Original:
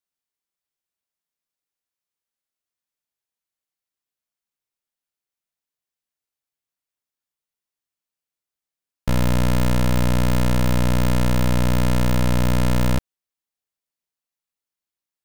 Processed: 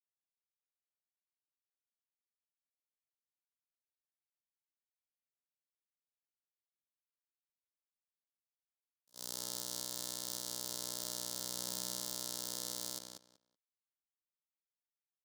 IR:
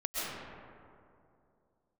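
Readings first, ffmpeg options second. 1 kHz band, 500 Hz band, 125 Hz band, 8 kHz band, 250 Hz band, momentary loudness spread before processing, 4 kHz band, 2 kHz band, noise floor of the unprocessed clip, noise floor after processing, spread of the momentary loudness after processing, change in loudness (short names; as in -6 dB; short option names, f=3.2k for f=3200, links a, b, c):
-24.5 dB, -25.0 dB, -39.5 dB, -3.5 dB, -32.0 dB, 2 LU, -9.0 dB, -26.5 dB, under -85 dBFS, under -85 dBFS, 7 LU, -18.5 dB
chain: -filter_complex "[0:a]flanger=delay=9.9:depth=1.9:regen=81:speed=0.15:shape=sinusoidal,highpass=310,aexciter=amount=15.2:drive=1.3:freq=3.7k,agate=range=-56dB:threshold=-16dB:ratio=16:detection=peak,asplit=2[a][b];[b]adelay=189,lowpass=f=4.6k:p=1,volume=-4dB,asplit=2[c][d];[d]adelay=189,lowpass=f=4.6k:p=1,volume=0.18,asplit=2[e][f];[f]adelay=189,lowpass=f=4.6k:p=1,volume=0.18[g];[c][e][g]amix=inputs=3:normalize=0[h];[a][h]amix=inputs=2:normalize=0,volume=1dB"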